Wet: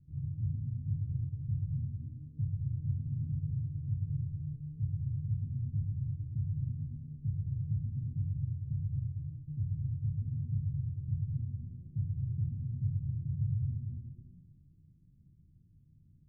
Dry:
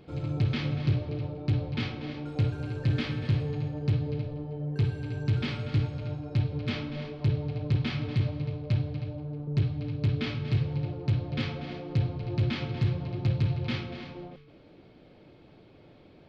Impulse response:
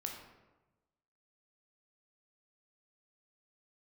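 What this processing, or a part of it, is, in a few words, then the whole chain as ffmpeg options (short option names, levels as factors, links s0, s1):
club heard from the street: -filter_complex "[0:a]alimiter=limit=0.0631:level=0:latency=1,lowpass=f=150:w=0.5412,lowpass=f=150:w=1.3066[s0];[1:a]atrim=start_sample=2205[s1];[s0][s1]afir=irnorm=-1:irlink=0"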